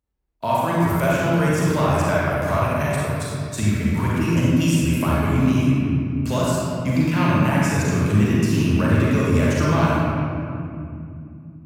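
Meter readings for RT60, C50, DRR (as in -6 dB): 2.6 s, -4.5 dB, -6.5 dB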